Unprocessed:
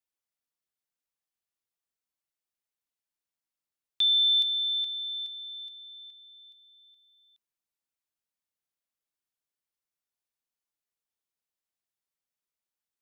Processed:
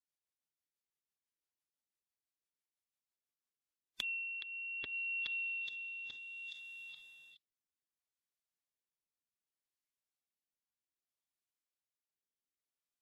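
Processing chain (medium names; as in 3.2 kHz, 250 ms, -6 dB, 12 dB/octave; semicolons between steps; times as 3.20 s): low-pass that closes with the level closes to 3 kHz, closed at -29 dBFS; spectral noise reduction 12 dB; low-pass that closes with the level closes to 3 kHz, closed at -33.5 dBFS; compression 10:1, threshold -45 dBFS, peak gain reduction 17 dB; rotary cabinet horn 6 Hz, later 0.65 Hz, at 3.30 s; formant-preserving pitch shift -4.5 st; trim +8.5 dB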